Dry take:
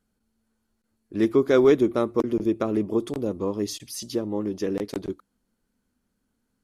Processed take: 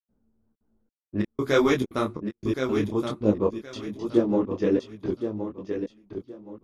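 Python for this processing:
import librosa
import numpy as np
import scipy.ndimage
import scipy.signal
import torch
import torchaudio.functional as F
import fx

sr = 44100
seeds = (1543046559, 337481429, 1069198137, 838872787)

y = fx.env_lowpass(x, sr, base_hz=700.0, full_db=-18.5)
y = fx.peak_eq(y, sr, hz=430.0, db=-9.5, octaves=1.8, at=(1.2, 3.25))
y = fx.step_gate(y, sr, bpm=173, pattern='.xxxxx.xxx...x.', floor_db=-60.0, edge_ms=4.5)
y = fx.echo_feedback(y, sr, ms=1070, feedback_pct=26, wet_db=-8.0)
y = fx.detune_double(y, sr, cents=42)
y = F.gain(torch.from_numpy(y), 8.5).numpy()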